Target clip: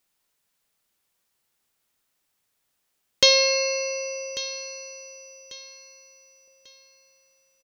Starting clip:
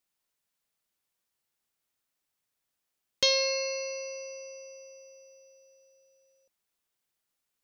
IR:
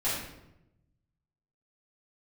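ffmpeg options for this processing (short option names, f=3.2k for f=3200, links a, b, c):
-filter_complex "[0:a]aecho=1:1:1143|2286|3429:0.168|0.052|0.0161,asplit=2[a][b];[1:a]atrim=start_sample=2205,asetrate=35280,aresample=44100[c];[b][c]afir=irnorm=-1:irlink=0,volume=-27.5dB[d];[a][d]amix=inputs=2:normalize=0,volume=8dB"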